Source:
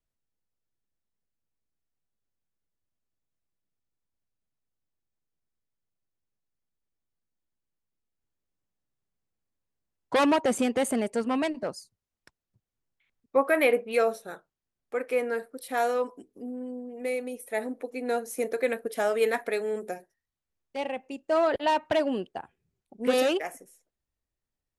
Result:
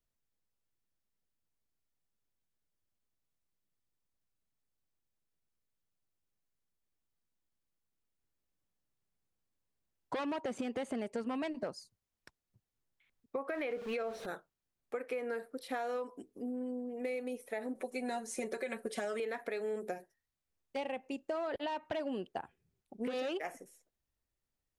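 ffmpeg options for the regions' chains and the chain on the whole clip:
ffmpeg -i in.wav -filter_complex "[0:a]asettb=1/sr,asplit=3[link_01][link_02][link_03];[link_01]atrim=end=13.494[link_04];[link_02]atrim=start=13.49:end=14.26,asetpts=PTS-STARTPTS,afade=type=in:duration=0.004:curve=qsin,afade=type=out:start_time=0.766:duration=0.004:curve=qsin,aeval=exprs='val(0)+0.5*0.0168*sgn(val(0))':channel_layout=same,lowpass=frequency=4000:poles=1[link_05];[link_03]atrim=start=14.256[link_06];[link_04][link_05]acrossfade=duration=0.004:curve1=hsin:curve2=qsin[link_07];[link_07][link_06]acrossfade=duration=0.004:curve1=qsin:curve2=hsin,asettb=1/sr,asplit=3[link_08][link_09][link_10];[link_08]atrim=end=17.754[link_11];[link_09]atrim=start=17.75:end=19.2,asetpts=PTS-STARTPTS,afade=type=in:duration=0.004:curve=qsin,afade=type=out:start_time=1.446:duration=0.004:curve=qsin,equalizer=frequency=8800:width_type=o:width=0.87:gain=13.5,aecho=1:1:5.3:0.8,atrim=end_sample=63945[link_12];[link_10]atrim=start=19.196[link_13];[link_11][link_12]acrossfade=duration=0.004:curve1=hsin:curve2=qsin[link_14];[link_14][link_13]acrossfade=duration=0.004:curve1=qsin:curve2=hsin,acrossover=split=6000[link_15][link_16];[link_16]acompressor=threshold=-58dB:ratio=4:attack=1:release=60[link_17];[link_15][link_17]amix=inputs=2:normalize=0,alimiter=limit=-22.5dB:level=0:latency=1:release=213,acompressor=threshold=-33dB:ratio=6,volume=-1dB" out.wav

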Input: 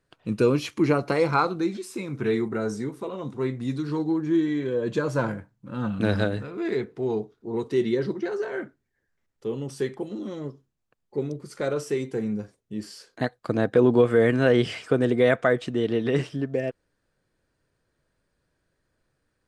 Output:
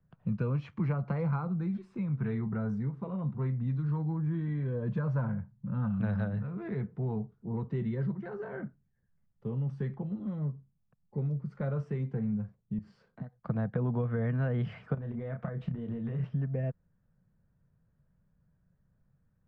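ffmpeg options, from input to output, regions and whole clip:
ffmpeg -i in.wav -filter_complex "[0:a]asettb=1/sr,asplit=3[link_01][link_02][link_03];[link_01]atrim=end=12.784[link_04];[link_02]atrim=start=12.78:end=13.39,asetpts=PTS-STARTPTS,afade=type=in:duration=0.004:curve=qsin,afade=type=out:start_time=0.606:duration=0.004:curve=qsin,bandreject=frequency=1700:width=12,acompressor=threshold=-39dB:ratio=6:attack=3.2:release=140:knee=1:detection=peak[link_05];[link_03]atrim=start=13.386[link_06];[link_04][link_05]acrossfade=duration=0.004:curve1=hsin:curve2=qsin[link_07];[link_07][link_06]acrossfade=duration=0.004:curve1=qsin:curve2=hsin,asettb=1/sr,asplit=3[link_08][link_09][link_10];[link_08]atrim=end=14.944[link_11];[link_09]atrim=start=14.94:end=16.24,asetpts=PTS-STARTPTS,afade=type=in:duration=0.004:curve=qsin,afade=type=out:start_time=1.296:duration=0.004:curve=qsin,acompressor=threshold=-29dB:ratio=12:attack=3.2:release=140:knee=1:detection=peak,acrusher=bits=9:mode=log:mix=0:aa=0.000001,asplit=2[link_12][link_13];[link_13]adelay=30,volume=-6dB[link_14];[link_12][link_14]amix=inputs=2:normalize=0,atrim=end_sample=57330[link_15];[link_10]atrim=start=16.236[link_16];[link_11][link_15]acrossfade=duration=0.004:curve1=hsin:curve2=qsin[link_17];[link_17][link_16]acrossfade=duration=0.004:curve1=qsin:curve2=hsin,lowpass=1300,lowshelf=frequency=240:width_type=q:width=3:gain=9.5,acrossover=split=140|580[link_18][link_19][link_20];[link_18]acompressor=threshold=-29dB:ratio=4[link_21];[link_19]acompressor=threshold=-32dB:ratio=4[link_22];[link_20]acompressor=threshold=-34dB:ratio=4[link_23];[link_21][link_22][link_23]amix=inputs=3:normalize=0,volume=-5dB" out.wav

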